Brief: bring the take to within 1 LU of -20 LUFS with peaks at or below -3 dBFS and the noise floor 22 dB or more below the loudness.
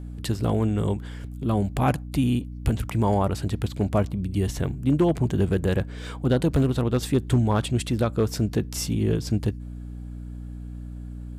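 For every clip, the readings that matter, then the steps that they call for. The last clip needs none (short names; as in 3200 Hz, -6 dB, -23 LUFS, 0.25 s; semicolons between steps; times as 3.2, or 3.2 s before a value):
clipped 0.3%; flat tops at -12.5 dBFS; hum 60 Hz; harmonics up to 300 Hz; hum level -34 dBFS; loudness -25.0 LUFS; peak -12.5 dBFS; loudness target -20.0 LUFS
-> clip repair -12.5 dBFS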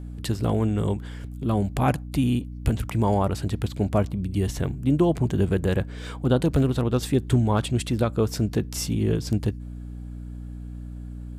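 clipped 0.0%; hum 60 Hz; harmonics up to 300 Hz; hum level -34 dBFS
-> de-hum 60 Hz, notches 5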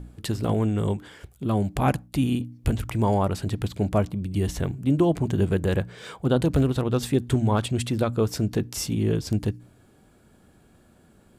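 hum none; loudness -25.0 LUFS; peak -8.5 dBFS; loudness target -20.0 LUFS
-> gain +5 dB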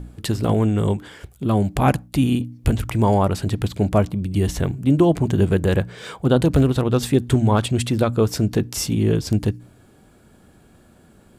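loudness -20.0 LUFS; peak -3.5 dBFS; noise floor -52 dBFS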